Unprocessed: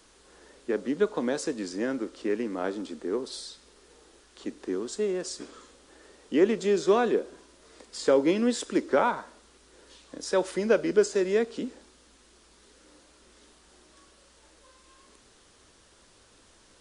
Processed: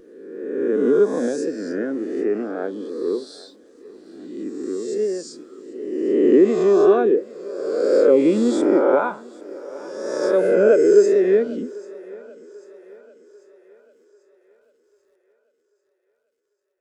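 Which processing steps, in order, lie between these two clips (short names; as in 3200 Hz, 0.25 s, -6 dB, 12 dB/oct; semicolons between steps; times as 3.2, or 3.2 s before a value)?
spectral swells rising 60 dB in 2.03 s; HPF 66 Hz; notch 940 Hz, Q 14; in parallel at 0 dB: limiter -15 dBFS, peak gain reduction 7 dB; on the sum: vibrato 2.8 Hz 30 cents; sample gate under -41 dBFS; on a send: thinning echo 0.792 s, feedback 66%, high-pass 210 Hz, level -14 dB; on the sum: spectral expander 1.5:1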